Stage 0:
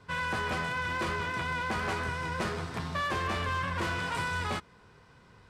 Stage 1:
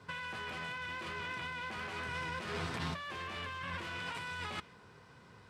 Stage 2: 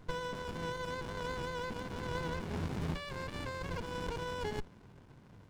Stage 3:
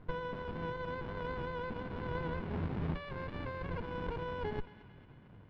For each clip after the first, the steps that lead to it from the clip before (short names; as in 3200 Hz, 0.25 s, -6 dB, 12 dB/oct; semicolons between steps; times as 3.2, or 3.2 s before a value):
HPF 83 Hz; dynamic EQ 2800 Hz, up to +7 dB, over -50 dBFS, Q 1.1; negative-ratio compressor -36 dBFS, ratio -1; gain -5 dB
running maximum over 65 samples; gain +4 dB
air absorption 390 m; narrowing echo 0.224 s, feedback 65%, band-pass 2500 Hz, level -13.5 dB; gain +1 dB